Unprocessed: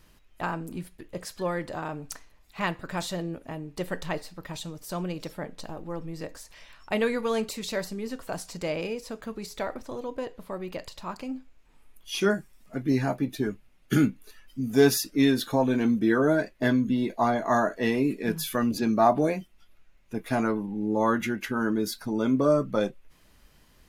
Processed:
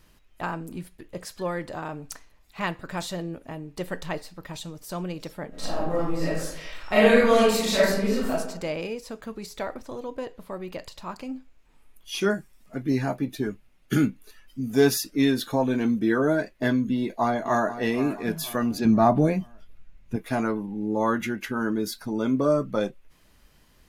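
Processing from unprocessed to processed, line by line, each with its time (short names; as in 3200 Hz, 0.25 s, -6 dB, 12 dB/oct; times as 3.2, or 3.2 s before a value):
5.49–8.3 reverb throw, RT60 0.83 s, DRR -10 dB
16.97–17.79 echo throw 0.48 s, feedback 45%, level -13 dB
18.85–20.16 tone controls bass +11 dB, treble -2 dB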